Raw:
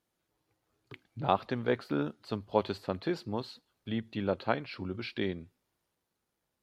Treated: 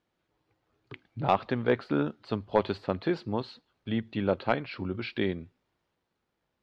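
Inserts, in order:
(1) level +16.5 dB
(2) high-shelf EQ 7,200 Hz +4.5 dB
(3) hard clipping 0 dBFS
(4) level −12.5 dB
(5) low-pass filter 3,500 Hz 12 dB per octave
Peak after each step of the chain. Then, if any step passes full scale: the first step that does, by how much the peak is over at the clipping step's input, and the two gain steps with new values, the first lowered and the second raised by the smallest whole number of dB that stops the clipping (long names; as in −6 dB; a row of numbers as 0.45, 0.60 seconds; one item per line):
+5.5, +5.5, 0.0, −12.5, −12.0 dBFS
step 1, 5.5 dB
step 1 +10.5 dB, step 4 −6.5 dB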